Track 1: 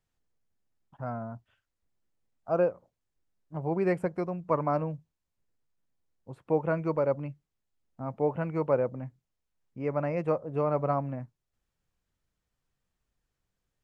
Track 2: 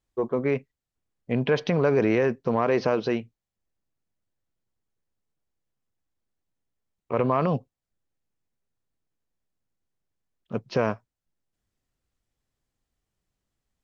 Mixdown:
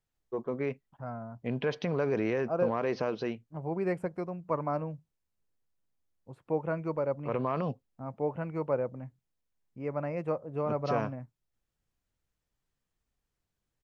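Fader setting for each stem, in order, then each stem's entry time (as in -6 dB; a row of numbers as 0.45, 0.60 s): -4.0, -8.0 dB; 0.00, 0.15 s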